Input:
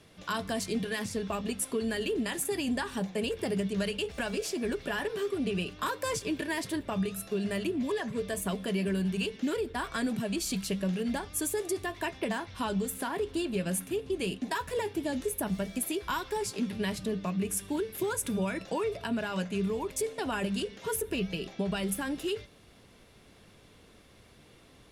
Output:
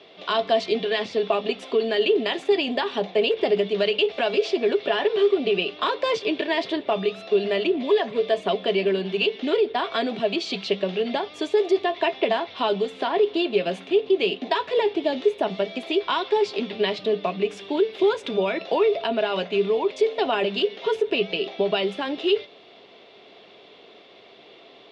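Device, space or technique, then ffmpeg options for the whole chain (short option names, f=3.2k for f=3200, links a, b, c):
phone earpiece: -af "highpass=330,equalizer=f=400:t=q:w=4:g=8,equalizer=f=680:t=q:w=4:g=9,equalizer=f=1.6k:t=q:w=4:g=-6,equalizer=f=3.5k:t=q:w=4:g=3,lowpass=f=4.2k:w=0.5412,lowpass=f=4.2k:w=1.3066,equalizer=f=3.2k:t=o:w=1.5:g=4.5,volume=7dB"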